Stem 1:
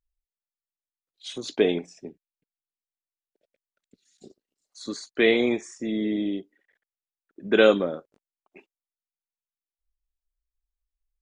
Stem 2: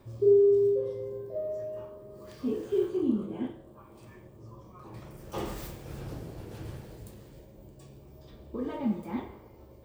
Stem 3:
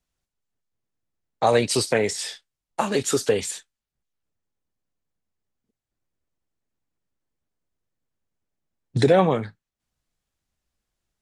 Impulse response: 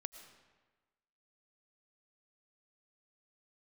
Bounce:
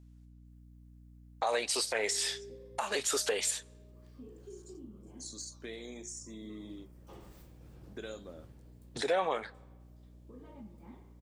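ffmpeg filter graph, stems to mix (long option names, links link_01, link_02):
-filter_complex "[0:a]aexciter=amount=6.7:drive=9.4:freq=4500,flanger=delay=7.4:depth=8:regen=-81:speed=0.63:shape=sinusoidal,acompressor=threshold=-27dB:ratio=5,adelay=450,volume=-14dB[link_01];[1:a]acompressor=threshold=-30dB:ratio=3,adelay=1750,volume=-19.5dB,asplit=2[link_02][link_03];[link_03]volume=-7.5dB[link_04];[2:a]highpass=640,aeval=exprs='val(0)+0.00158*(sin(2*PI*60*n/s)+sin(2*PI*2*60*n/s)/2+sin(2*PI*3*60*n/s)/3+sin(2*PI*4*60*n/s)/4+sin(2*PI*5*60*n/s)/5)':channel_layout=same,volume=1.5dB,asplit=3[link_05][link_06][link_07];[link_06]volume=-19.5dB[link_08];[link_07]apad=whole_len=514355[link_09];[link_01][link_09]sidechaincompress=threshold=-38dB:ratio=8:attack=16:release=291[link_10];[3:a]atrim=start_sample=2205[link_11];[link_04][link_08]amix=inputs=2:normalize=0[link_12];[link_12][link_11]afir=irnorm=-1:irlink=0[link_13];[link_10][link_02][link_05][link_13]amix=inputs=4:normalize=0,alimiter=limit=-20.5dB:level=0:latency=1:release=252"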